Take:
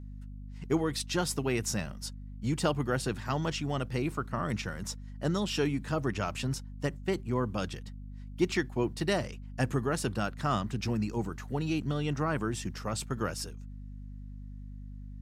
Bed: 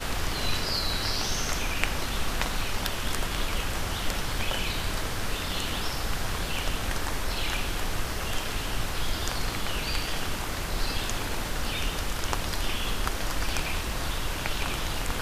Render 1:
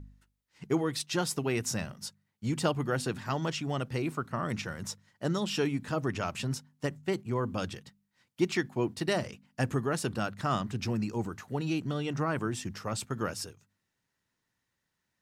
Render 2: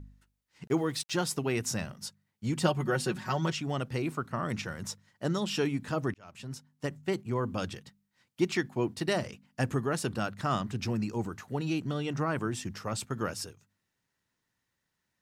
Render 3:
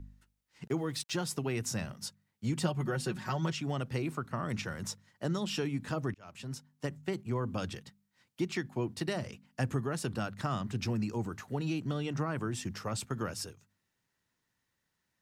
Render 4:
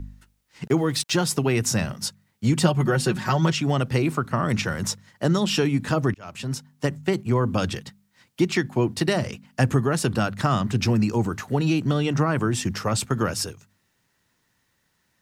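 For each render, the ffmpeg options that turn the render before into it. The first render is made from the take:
-af "bandreject=f=50:t=h:w=4,bandreject=f=100:t=h:w=4,bandreject=f=150:t=h:w=4,bandreject=f=200:t=h:w=4,bandreject=f=250:t=h:w=4"
-filter_complex "[0:a]asettb=1/sr,asplit=3[s0][s1][s2];[s0]atrim=end=0.674[s3];[s1]atrim=start=0.67:end=1.22,asetpts=PTS-STARTPTS,afade=t=in:d=0.004:c=qsin,afade=t=out:st=0.546:d=0.004:c=qsin,aeval=exprs='val(0)*gte(abs(val(0)),0.00282)':c=same[s4];[s2]atrim=start=1.216[s5];[s3][s4]acrossfade=d=0.004:c1=hsin:c2=qsin[s6];[s6][s5]acrossfade=d=0.004:c1=qsin:c2=hsin,asettb=1/sr,asplit=3[s7][s8][s9];[s7]atrim=end=2.614[s10];[s8]atrim=start=2.61:end=3.52,asetpts=PTS-STARTPTS,afade=t=in:d=0.004:c=qsin,afade=t=out:st=0.906:d=0.004:c=qsin,aecho=1:1:5.4:0.65,atrim=end_sample=40131[s11];[s9]atrim=start=3.516[s12];[s10][s11]acrossfade=d=0.004:c1=hsin:c2=qsin[s13];[s13][s12]acrossfade=d=0.004:c1=qsin:c2=hsin,asplit=2[s14][s15];[s14]atrim=end=6.14,asetpts=PTS-STARTPTS,afade=t=out:st=6.136:d=0.004:c=hsin[s16];[s15]atrim=start=6.14,asetpts=PTS-STARTPTS,afade=t=in:d=0.87[s17];[s16][s17]concat=n=2:v=0:a=1"
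-filter_complex "[0:a]acrossover=split=170[s0][s1];[s1]acompressor=threshold=0.02:ratio=2.5[s2];[s0][s2]amix=inputs=2:normalize=0"
-af "volume=3.98"

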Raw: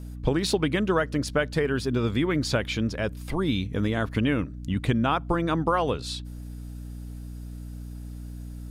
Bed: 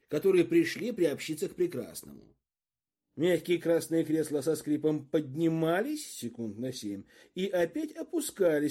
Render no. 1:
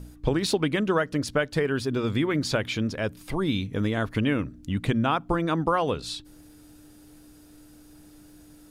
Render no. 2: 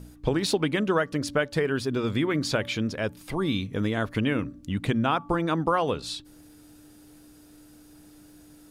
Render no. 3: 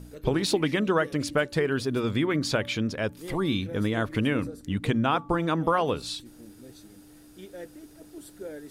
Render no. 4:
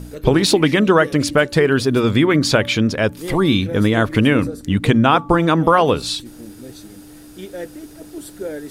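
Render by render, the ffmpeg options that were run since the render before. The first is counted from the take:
-af "bandreject=f=60:t=h:w=4,bandreject=f=120:t=h:w=4,bandreject=f=180:t=h:w=4,bandreject=f=240:t=h:w=4"
-af "lowshelf=f=67:g=-6.5,bandreject=f=287.7:t=h:w=4,bandreject=f=575.4:t=h:w=4,bandreject=f=863.1:t=h:w=4,bandreject=f=1150.8:t=h:w=4"
-filter_complex "[1:a]volume=0.224[s0];[0:a][s0]amix=inputs=2:normalize=0"
-af "volume=3.55,alimiter=limit=0.794:level=0:latency=1"

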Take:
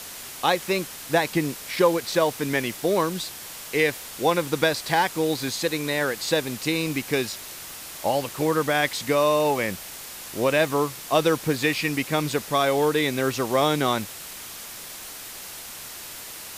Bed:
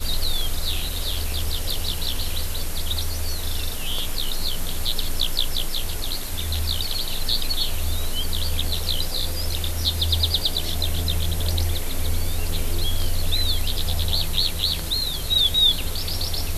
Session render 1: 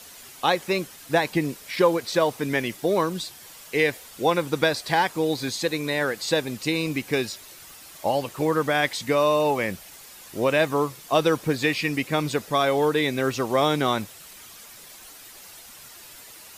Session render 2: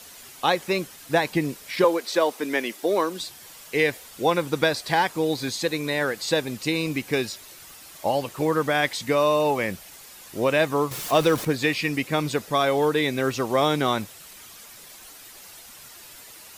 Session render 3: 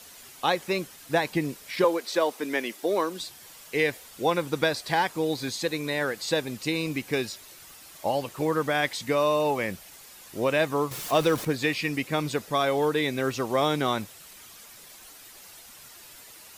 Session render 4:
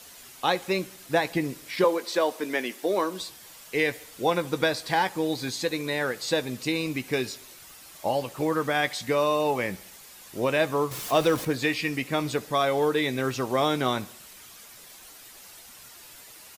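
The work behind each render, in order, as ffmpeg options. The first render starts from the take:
-af "afftdn=nr=9:nf=-39"
-filter_complex "[0:a]asettb=1/sr,asplit=3[s0][s1][s2];[s0]atrim=end=1.844[s3];[s1]atrim=start=1.84:end=3.2,asetpts=PTS-STARTPTS,afade=t=in:d=0.004:c=qsin,afade=t=out:st=1.356:d=0.004:c=qsin,highpass=f=240:w=0.5412,highpass=f=240:w=1.3066[s4];[s2]atrim=start=3.196[s5];[s3][s4]acrossfade=d=0.004:c1=hsin:c2=qsin[s6];[s6][s5]acrossfade=d=0.004:c1=qsin:c2=hsin,asettb=1/sr,asplit=3[s7][s8][s9];[s7]atrim=end=10.914[s10];[s8]atrim=start=10.91:end=11.45,asetpts=PTS-STARTPTS,afade=t=in:d=0.004:c=qsin,afade=t=out:st=0.536:d=0.004:c=qsin,aeval=exprs='val(0)+0.5*0.0355*sgn(val(0))':c=same[s11];[s9]atrim=start=11.446[s12];[s10][s11]acrossfade=d=0.004:c1=hsin:c2=qsin[s13];[s13][s12]acrossfade=d=0.004:c1=qsin:c2=hsin"
-af "volume=0.708"
-filter_complex "[0:a]asplit=2[s0][s1];[s1]adelay=16,volume=0.237[s2];[s0][s2]amix=inputs=2:normalize=0,aecho=1:1:69|138|207|276:0.0708|0.0425|0.0255|0.0153"

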